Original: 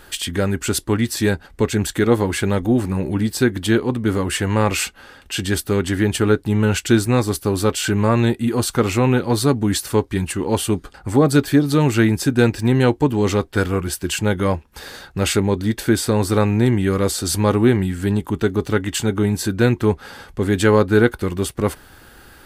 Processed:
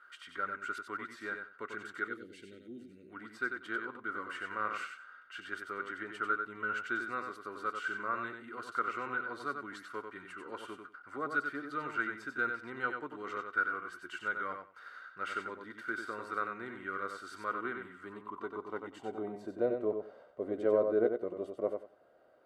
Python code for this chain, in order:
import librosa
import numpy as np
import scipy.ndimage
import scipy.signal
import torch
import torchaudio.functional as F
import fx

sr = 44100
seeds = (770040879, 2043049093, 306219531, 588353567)

p1 = fx.cheby1_bandstop(x, sr, low_hz=310.0, high_hz=3500.0, order=2, at=(2.06, 3.09), fade=0.02)
p2 = fx.dynamic_eq(p1, sr, hz=340.0, q=1.5, threshold_db=-30.0, ratio=4.0, max_db=5)
p3 = fx.filter_sweep_bandpass(p2, sr, from_hz=1400.0, to_hz=620.0, start_s=17.74, end_s=19.55, q=6.4)
p4 = fx.notch_comb(p3, sr, f0_hz=840.0)
p5 = p4 + fx.echo_feedback(p4, sr, ms=93, feedback_pct=18, wet_db=-6, dry=0)
y = p5 * librosa.db_to_amplitude(-3.0)